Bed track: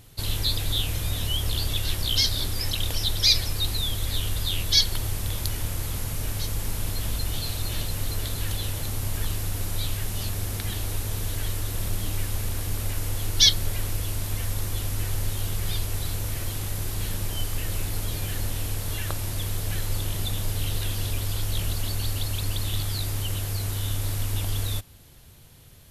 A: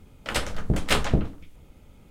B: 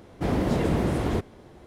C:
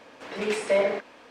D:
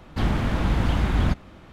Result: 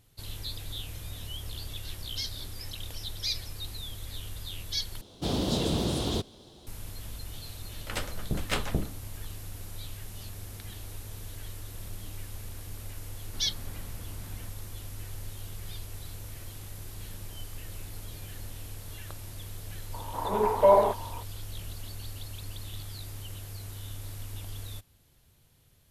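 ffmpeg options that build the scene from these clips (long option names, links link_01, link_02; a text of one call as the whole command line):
ffmpeg -i bed.wav -i cue0.wav -i cue1.wav -i cue2.wav -i cue3.wav -filter_complex "[0:a]volume=-12.5dB[link_01];[2:a]highshelf=frequency=2700:width_type=q:width=3:gain=10[link_02];[4:a]acompressor=threshold=-26dB:ratio=6:attack=3.2:release=140:knee=1:detection=peak[link_03];[3:a]lowpass=frequency=940:width_type=q:width=9.8[link_04];[link_01]asplit=2[link_05][link_06];[link_05]atrim=end=5.014[link_07];[link_02]atrim=end=1.66,asetpts=PTS-STARTPTS,volume=-4.5dB[link_08];[link_06]atrim=start=6.666[link_09];[1:a]atrim=end=2.1,asetpts=PTS-STARTPTS,volume=-7.5dB,afade=type=in:duration=0.004:curve=hsin,afade=type=out:start_time=2.096:duration=0.004:curve=hsin,adelay=7610[link_10];[link_03]atrim=end=1.72,asetpts=PTS-STARTPTS,volume=-17dB,afade=type=in:duration=0.004:curve=hsin,afade=type=out:start_time=1.716:duration=0.004:curve=hsin,adelay=13170[link_11];[link_04]atrim=end=1.3,asetpts=PTS-STARTPTS,volume=-1.5dB,afade=type=in:duration=0.004:curve=hsin,afade=type=out:start_time=1.296:duration=0.004:curve=hsin,adelay=19930[link_12];[link_07][link_08]acrossfade=duration=0.004:curve1=hsin:curve2=hsin[link_13];[link_13][link_09]acrossfade=duration=0.004:curve1=hsin:curve2=hsin[link_14];[link_14][link_10][link_11][link_12]amix=inputs=4:normalize=0" out.wav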